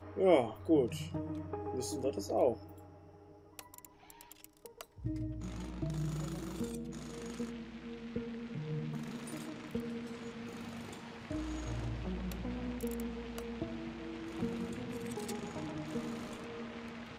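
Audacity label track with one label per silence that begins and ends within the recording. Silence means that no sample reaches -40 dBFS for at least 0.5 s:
2.540000	3.590000	silence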